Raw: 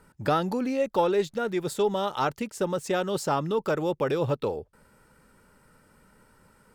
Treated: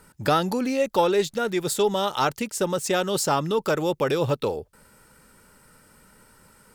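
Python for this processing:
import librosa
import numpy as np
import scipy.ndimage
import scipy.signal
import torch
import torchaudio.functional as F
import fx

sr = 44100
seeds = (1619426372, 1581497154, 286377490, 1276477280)

y = fx.high_shelf(x, sr, hz=3000.0, db=9.0)
y = F.gain(torch.from_numpy(y), 2.5).numpy()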